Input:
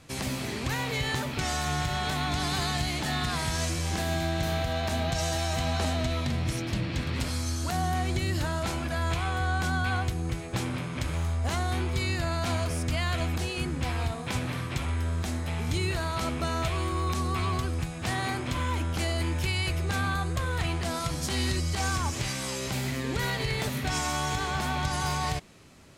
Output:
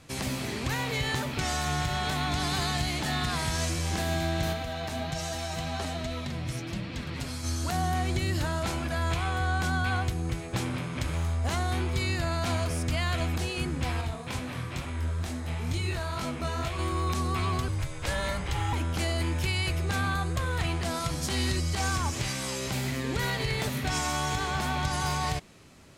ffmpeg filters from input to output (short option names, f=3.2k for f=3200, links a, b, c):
-filter_complex "[0:a]asplit=3[a][b][c];[a]afade=t=out:st=4.52:d=0.02[d];[b]flanger=delay=3.8:depth=4.1:regen=44:speed=1.3:shape=triangular,afade=t=in:st=4.52:d=0.02,afade=t=out:st=7.43:d=0.02[e];[c]afade=t=in:st=7.43:d=0.02[f];[d][e][f]amix=inputs=3:normalize=0,asettb=1/sr,asplit=3[g][h][i];[g]atrim=end=14.014[j];[h]atrim=start=14.01:end=16.79,asetpts=PTS-STARTPTS,afade=t=in:d=0.004:c=qsin,afade=t=out:st=2.776:d=0.004:c=qsin,flanger=delay=20:depth=6.4:speed=2.2[k];[i]atrim=start=16.786[l];[j][k]acrossfade=d=0.004:c1=hsin:c2=qsin[m];[m][l]acrossfade=d=0.004:c1=qsin:c2=hsin,asettb=1/sr,asplit=3[n][o][p];[n]atrim=end=17.684[q];[o]atrim=start=17.68:end=18.73,asetpts=PTS-STARTPTS,afade=t=in:d=0.004:c=qsin,afade=t=out:st=1.046:d=0.004:c=qsin,afreqshift=-180[r];[p]atrim=start=18.726[s];[q][r]acrossfade=d=0.004:c1=hsin:c2=qsin[t];[t][s]acrossfade=d=0.004:c1=qsin:c2=hsin"